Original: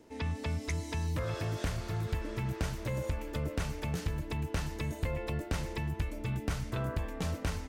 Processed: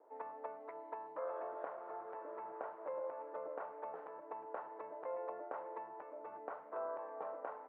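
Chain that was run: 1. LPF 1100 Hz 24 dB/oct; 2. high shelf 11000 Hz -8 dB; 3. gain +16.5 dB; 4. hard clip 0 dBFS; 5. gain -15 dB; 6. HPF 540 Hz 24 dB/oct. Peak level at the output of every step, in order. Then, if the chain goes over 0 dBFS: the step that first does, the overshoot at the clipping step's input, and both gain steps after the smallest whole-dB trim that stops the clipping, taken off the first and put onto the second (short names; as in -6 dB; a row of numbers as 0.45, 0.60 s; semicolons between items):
-22.0, -22.0, -5.5, -5.5, -20.5, -26.5 dBFS; no overload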